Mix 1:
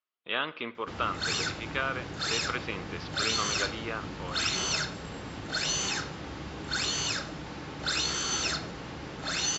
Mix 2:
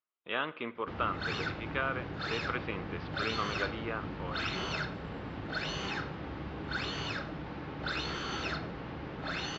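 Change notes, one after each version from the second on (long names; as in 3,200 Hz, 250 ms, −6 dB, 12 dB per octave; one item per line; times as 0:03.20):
master: add high-frequency loss of the air 320 metres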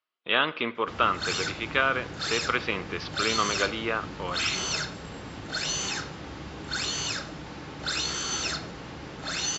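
speech +7.0 dB
master: remove high-frequency loss of the air 320 metres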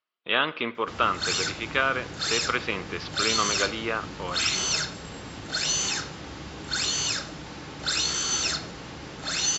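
background: add high-shelf EQ 4,400 Hz +8 dB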